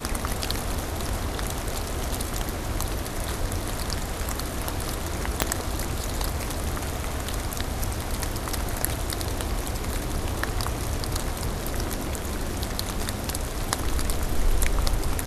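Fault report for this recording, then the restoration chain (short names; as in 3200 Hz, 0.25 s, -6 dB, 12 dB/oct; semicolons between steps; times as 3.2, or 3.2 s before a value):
5.42 pop -1 dBFS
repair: de-click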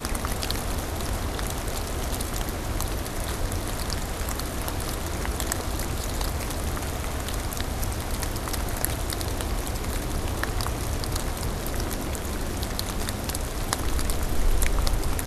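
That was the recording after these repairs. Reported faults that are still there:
5.42 pop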